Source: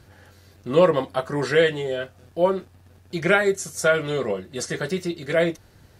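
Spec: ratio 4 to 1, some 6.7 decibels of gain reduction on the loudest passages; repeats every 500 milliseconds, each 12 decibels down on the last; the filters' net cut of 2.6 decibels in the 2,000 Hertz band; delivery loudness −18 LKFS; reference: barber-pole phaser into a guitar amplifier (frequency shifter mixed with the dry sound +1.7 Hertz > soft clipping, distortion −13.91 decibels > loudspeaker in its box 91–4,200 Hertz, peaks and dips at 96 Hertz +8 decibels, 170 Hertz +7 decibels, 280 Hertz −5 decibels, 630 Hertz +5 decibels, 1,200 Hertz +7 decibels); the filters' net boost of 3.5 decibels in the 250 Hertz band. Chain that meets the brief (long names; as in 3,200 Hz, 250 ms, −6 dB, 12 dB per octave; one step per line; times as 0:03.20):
parametric band 250 Hz +3.5 dB
parametric band 2,000 Hz −5.5 dB
downward compressor 4 to 1, threshold −19 dBFS
repeating echo 500 ms, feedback 25%, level −12 dB
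frequency shifter mixed with the dry sound +1.7 Hz
soft clipping −21.5 dBFS
loudspeaker in its box 91–4,200 Hz, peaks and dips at 96 Hz +8 dB, 170 Hz +7 dB, 280 Hz −5 dB, 630 Hz +5 dB, 1,200 Hz +7 dB
level +11.5 dB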